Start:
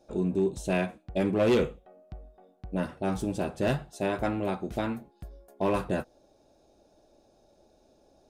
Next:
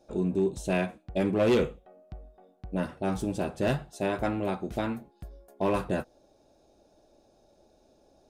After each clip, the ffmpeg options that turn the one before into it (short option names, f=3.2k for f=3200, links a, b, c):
-af anull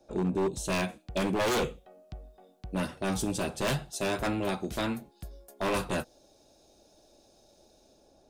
-filter_complex "[0:a]acrossover=split=210|660|2900[a][b][c][d];[d]dynaudnorm=f=180:g=7:m=10dB[e];[a][b][c][e]amix=inputs=4:normalize=0,aeval=exprs='0.0794*(abs(mod(val(0)/0.0794+3,4)-2)-1)':c=same"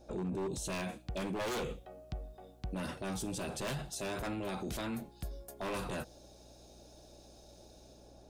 -af "alimiter=level_in=10dB:limit=-24dB:level=0:latency=1:release=31,volume=-10dB,aeval=exprs='val(0)+0.000708*(sin(2*PI*60*n/s)+sin(2*PI*2*60*n/s)/2+sin(2*PI*3*60*n/s)/3+sin(2*PI*4*60*n/s)/4+sin(2*PI*5*60*n/s)/5)':c=same,volume=3dB"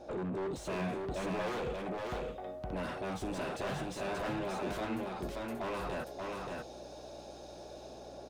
-filter_complex "[0:a]asplit=2[a][b];[b]highpass=f=720:p=1,volume=21dB,asoftclip=type=tanh:threshold=-30.5dB[c];[a][c]amix=inputs=2:normalize=0,lowpass=f=1.2k:p=1,volume=-6dB,aecho=1:1:582:0.708"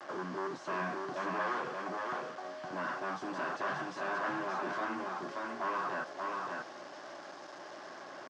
-af "acrusher=bits=7:mix=0:aa=0.000001,highpass=f=180:w=0.5412,highpass=f=180:w=1.3066,equalizer=f=210:t=q:w=4:g=-8,equalizer=f=470:t=q:w=4:g=-8,equalizer=f=1.1k:t=q:w=4:g=10,equalizer=f=1.6k:t=q:w=4:g=8,equalizer=f=2.5k:t=q:w=4:g=-5,equalizer=f=3.8k:t=q:w=4:g=-7,lowpass=f=5.5k:w=0.5412,lowpass=f=5.5k:w=1.3066"